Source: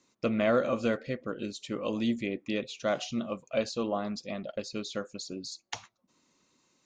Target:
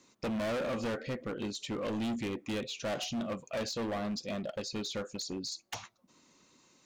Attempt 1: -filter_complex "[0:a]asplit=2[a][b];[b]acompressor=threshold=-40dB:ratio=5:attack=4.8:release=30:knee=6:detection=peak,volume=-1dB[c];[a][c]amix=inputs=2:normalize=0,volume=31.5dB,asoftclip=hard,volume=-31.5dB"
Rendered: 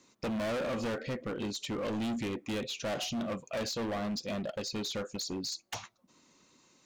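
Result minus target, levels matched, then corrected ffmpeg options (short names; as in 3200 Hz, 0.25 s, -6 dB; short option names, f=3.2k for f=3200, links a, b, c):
compressor: peak gain reduction -9.5 dB
-filter_complex "[0:a]asplit=2[a][b];[b]acompressor=threshold=-52dB:ratio=5:attack=4.8:release=30:knee=6:detection=peak,volume=-1dB[c];[a][c]amix=inputs=2:normalize=0,volume=31.5dB,asoftclip=hard,volume=-31.5dB"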